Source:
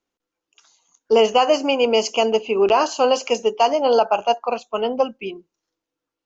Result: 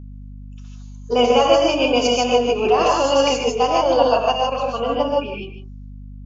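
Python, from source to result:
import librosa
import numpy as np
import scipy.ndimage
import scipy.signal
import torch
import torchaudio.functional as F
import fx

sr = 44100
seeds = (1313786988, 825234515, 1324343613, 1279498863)

p1 = fx.rev_gated(x, sr, seeds[0], gate_ms=180, shape='rising', drr_db=-2.0)
p2 = fx.pitch_keep_formants(p1, sr, semitones=1.5)
p3 = p2 + fx.echo_single(p2, sr, ms=151, db=-12.0, dry=0)
p4 = fx.add_hum(p3, sr, base_hz=50, snr_db=17)
y = p4 * 10.0 ** (-3.0 / 20.0)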